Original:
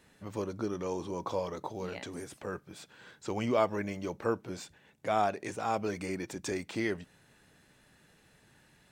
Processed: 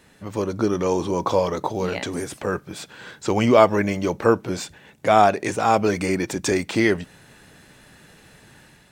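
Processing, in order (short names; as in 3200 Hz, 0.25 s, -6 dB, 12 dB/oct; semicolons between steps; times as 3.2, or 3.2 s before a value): AGC gain up to 5 dB; gain +8.5 dB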